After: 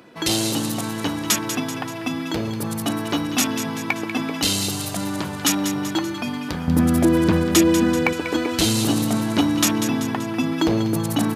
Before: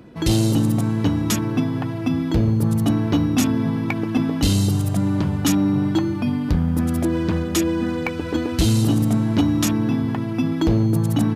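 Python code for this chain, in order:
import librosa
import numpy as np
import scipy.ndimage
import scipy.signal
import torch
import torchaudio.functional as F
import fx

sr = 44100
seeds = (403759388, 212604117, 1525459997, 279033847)

y = fx.highpass(x, sr, hz=fx.steps((0.0, 870.0), (6.68, 140.0), (8.13, 500.0)), slope=6)
y = fx.echo_wet_highpass(y, sr, ms=192, feedback_pct=51, hz=1600.0, wet_db=-9.0)
y = y * 10.0 ** (5.5 / 20.0)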